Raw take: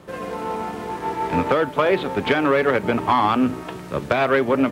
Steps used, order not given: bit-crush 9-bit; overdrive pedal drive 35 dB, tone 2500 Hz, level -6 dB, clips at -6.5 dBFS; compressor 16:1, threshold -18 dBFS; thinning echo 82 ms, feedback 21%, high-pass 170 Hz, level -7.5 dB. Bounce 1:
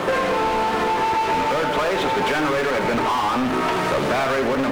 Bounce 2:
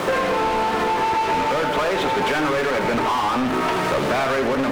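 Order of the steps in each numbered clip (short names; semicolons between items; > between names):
overdrive pedal > thinning echo > compressor > bit-crush; bit-crush > overdrive pedal > thinning echo > compressor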